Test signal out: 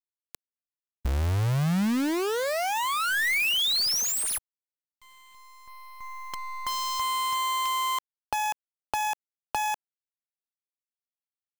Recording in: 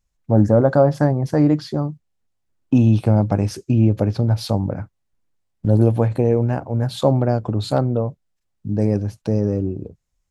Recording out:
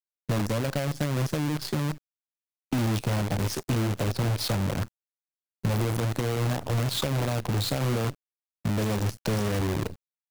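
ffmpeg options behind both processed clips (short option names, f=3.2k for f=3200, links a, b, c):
-filter_complex "[0:a]acompressor=threshold=-23dB:ratio=5,asoftclip=type=tanh:threshold=-20.5dB,acrossover=split=160|3200[a][b][c];[a]acompressor=threshold=-37dB:ratio=4[d];[b]acompressor=threshold=-39dB:ratio=4[e];[c]acompressor=threshold=-40dB:ratio=4[f];[d][e][f]amix=inputs=3:normalize=0,acrusher=bits=7:dc=4:mix=0:aa=0.000001,volume=8dB"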